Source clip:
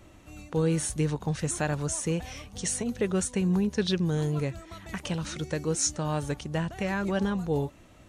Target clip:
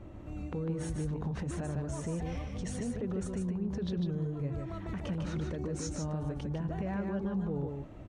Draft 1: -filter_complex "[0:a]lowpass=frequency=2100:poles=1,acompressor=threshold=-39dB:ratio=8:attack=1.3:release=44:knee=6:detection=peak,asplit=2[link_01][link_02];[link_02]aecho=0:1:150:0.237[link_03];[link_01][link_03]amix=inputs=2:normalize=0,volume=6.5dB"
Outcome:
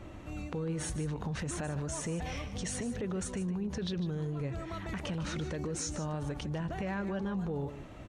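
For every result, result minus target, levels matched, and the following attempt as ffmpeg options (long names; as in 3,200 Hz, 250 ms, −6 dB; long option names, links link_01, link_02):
2,000 Hz band +6.0 dB; echo-to-direct −8 dB
-filter_complex "[0:a]lowpass=frequency=550:poles=1,acompressor=threshold=-39dB:ratio=8:attack=1.3:release=44:knee=6:detection=peak,asplit=2[link_01][link_02];[link_02]aecho=0:1:150:0.237[link_03];[link_01][link_03]amix=inputs=2:normalize=0,volume=6.5dB"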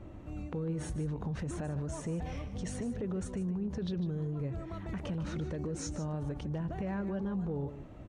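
echo-to-direct −8 dB
-filter_complex "[0:a]lowpass=frequency=550:poles=1,acompressor=threshold=-39dB:ratio=8:attack=1.3:release=44:knee=6:detection=peak,asplit=2[link_01][link_02];[link_02]aecho=0:1:150:0.596[link_03];[link_01][link_03]amix=inputs=2:normalize=0,volume=6.5dB"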